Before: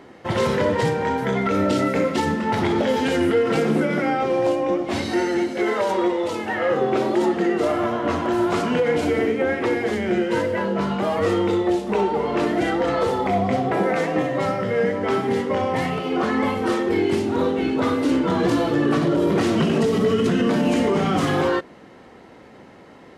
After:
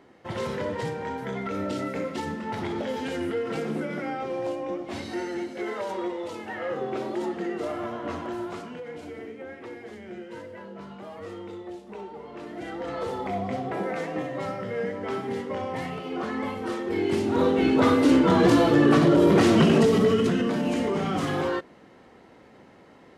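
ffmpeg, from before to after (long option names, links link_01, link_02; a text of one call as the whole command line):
ffmpeg -i in.wav -af "volume=10dB,afade=type=out:start_time=8.19:duration=0.55:silence=0.375837,afade=type=in:start_time=12.44:duration=0.72:silence=0.334965,afade=type=in:start_time=16.83:duration=0.92:silence=0.298538,afade=type=out:start_time=19.7:duration=0.8:silence=0.398107" out.wav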